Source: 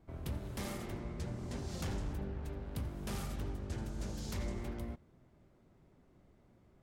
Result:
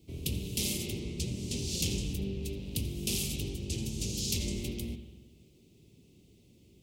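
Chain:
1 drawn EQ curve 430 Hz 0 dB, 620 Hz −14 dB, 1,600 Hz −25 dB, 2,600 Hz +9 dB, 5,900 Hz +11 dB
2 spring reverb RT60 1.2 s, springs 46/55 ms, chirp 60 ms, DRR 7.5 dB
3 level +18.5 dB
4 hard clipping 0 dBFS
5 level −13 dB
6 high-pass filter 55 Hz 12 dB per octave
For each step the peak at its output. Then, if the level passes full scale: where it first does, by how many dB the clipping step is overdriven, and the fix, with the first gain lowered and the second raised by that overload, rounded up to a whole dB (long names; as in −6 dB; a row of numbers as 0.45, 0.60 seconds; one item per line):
−21.0, −21.0, −2.5, −2.5, −15.5, −15.5 dBFS
no step passes full scale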